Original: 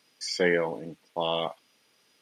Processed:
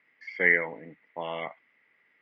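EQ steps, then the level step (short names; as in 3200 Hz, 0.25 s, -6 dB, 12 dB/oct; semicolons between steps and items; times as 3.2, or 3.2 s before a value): HPF 79 Hz; ladder low-pass 2100 Hz, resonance 85%; +6.0 dB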